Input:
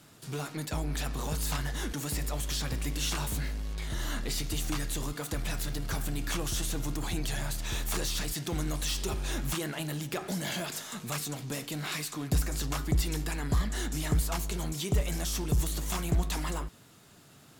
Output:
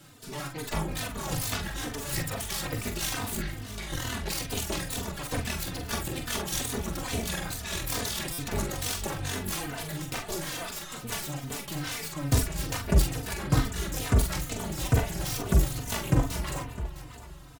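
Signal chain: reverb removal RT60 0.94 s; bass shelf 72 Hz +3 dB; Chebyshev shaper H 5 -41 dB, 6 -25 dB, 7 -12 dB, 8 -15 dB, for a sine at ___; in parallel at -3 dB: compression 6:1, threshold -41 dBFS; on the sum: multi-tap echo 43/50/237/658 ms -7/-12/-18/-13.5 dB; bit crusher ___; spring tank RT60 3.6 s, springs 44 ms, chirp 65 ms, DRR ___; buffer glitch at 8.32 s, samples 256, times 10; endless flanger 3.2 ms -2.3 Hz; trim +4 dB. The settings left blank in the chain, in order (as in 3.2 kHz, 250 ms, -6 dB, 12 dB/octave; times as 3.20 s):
-17 dBFS, 12-bit, 10.5 dB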